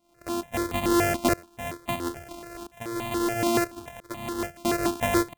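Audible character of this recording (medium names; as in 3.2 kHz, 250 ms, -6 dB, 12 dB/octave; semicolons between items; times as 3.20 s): a buzz of ramps at a fixed pitch in blocks of 128 samples; tremolo saw up 0.75 Hz, depth 95%; notches that jump at a steady rate 7 Hz 450–1500 Hz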